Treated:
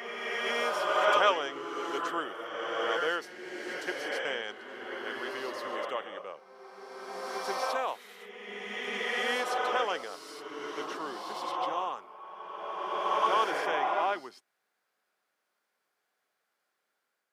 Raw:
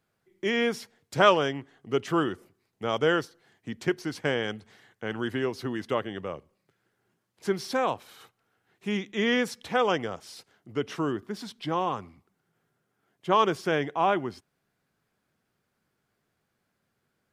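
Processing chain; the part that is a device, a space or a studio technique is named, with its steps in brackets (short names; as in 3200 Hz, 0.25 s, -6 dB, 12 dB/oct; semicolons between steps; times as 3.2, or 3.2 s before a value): ghost voice (reverse; reverb RT60 2.9 s, pre-delay 87 ms, DRR -2 dB; reverse; HPF 580 Hz 12 dB/oct); gain -4.5 dB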